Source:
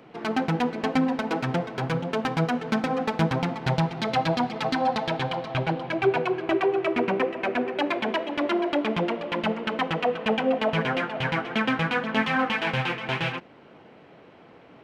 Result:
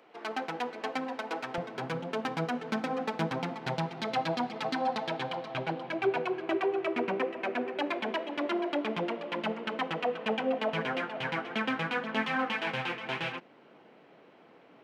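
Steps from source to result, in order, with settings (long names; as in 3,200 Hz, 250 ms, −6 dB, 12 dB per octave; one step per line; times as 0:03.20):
high-pass filter 430 Hz 12 dB per octave, from 0:01.58 190 Hz
level −6 dB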